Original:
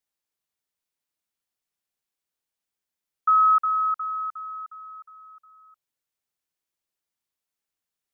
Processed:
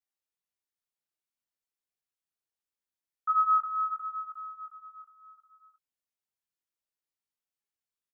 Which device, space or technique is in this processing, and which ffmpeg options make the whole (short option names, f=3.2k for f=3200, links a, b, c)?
double-tracked vocal: -filter_complex "[0:a]asplit=2[a][b];[b]adelay=22,volume=-12dB[c];[a][c]amix=inputs=2:normalize=0,flanger=delay=18:depth=3.4:speed=0.68,volume=-5.5dB"